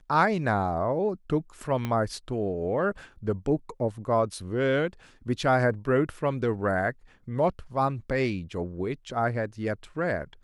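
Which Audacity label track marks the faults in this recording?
1.850000	1.850000	click −17 dBFS

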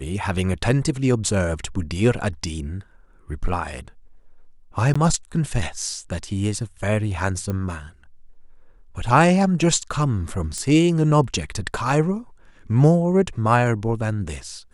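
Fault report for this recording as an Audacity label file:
4.940000	4.960000	drop-out 15 ms
7.500000	7.500000	click −15 dBFS
10.580000	10.580000	click −16 dBFS

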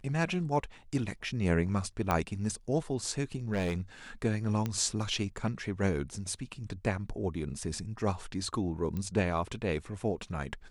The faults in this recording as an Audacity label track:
2.110000	2.110000	click −14 dBFS
3.530000	3.800000	clipping −26.5 dBFS
4.660000	4.660000	click −19 dBFS
8.970000	8.970000	click −24 dBFS

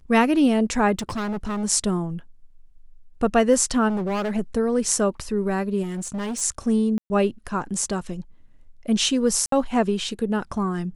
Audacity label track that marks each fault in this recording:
0.990000	1.650000	clipping −24.5 dBFS
3.880000	4.320000	clipping −22.5 dBFS
5.820000	6.420000	clipping −25.5 dBFS
6.980000	7.100000	drop-out 120 ms
9.460000	9.520000	drop-out 63 ms

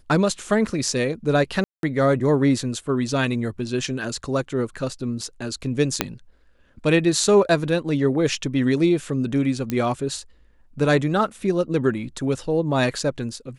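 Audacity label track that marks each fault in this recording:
1.640000	1.830000	drop-out 192 ms
6.010000	6.010000	click −2 dBFS
9.700000	9.700000	click −11 dBFS

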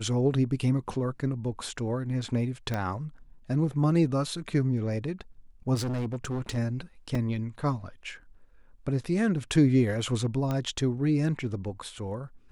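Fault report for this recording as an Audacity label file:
2.740000	2.740000	click −17 dBFS
5.740000	6.580000	clipping −27.5 dBFS
7.150000	7.150000	drop-out 3.2 ms
10.510000	10.510000	click −18 dBFS

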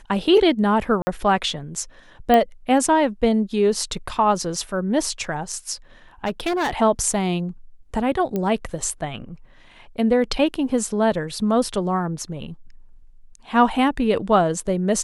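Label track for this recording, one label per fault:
1.020000	1.070000	drop-out 50 ms
2.340000	2.340000	click −6 dBFS
6.250000	6.810000	clipping −18.5 dBFS
8.360000	8.360000	click −13 dBFS

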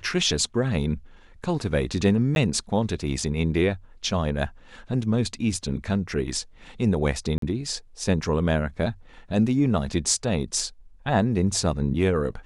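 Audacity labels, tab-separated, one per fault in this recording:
2.350000	2.360000	drop-out
7.380000	7.420000	drop-out 43 ms

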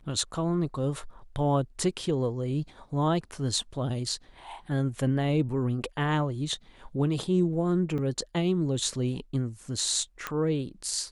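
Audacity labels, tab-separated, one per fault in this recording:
7.980000	7.990000	drop-out 5.1 ms
10.270000	10.270000	click −15 dBFS

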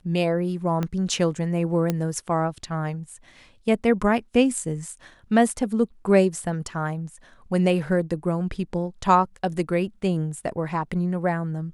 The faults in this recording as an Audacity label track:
0.830000	0.830000	click −14 dBFS
1.900000	1.900000	click −10 dBFS

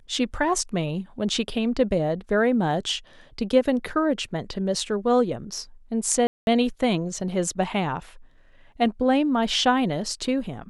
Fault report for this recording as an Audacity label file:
6.270000	6.470000	drop-out 201 ms

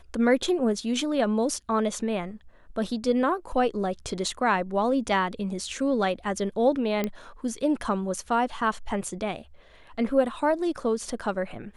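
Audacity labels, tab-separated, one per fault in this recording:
7.040000	7.040000	click −14 dBFS

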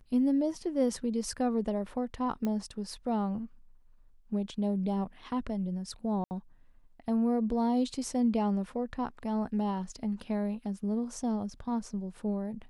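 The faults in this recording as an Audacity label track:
2.450000	2.450000	click −21 dBFS
6.240000	6.310000	drop-out 69 ms

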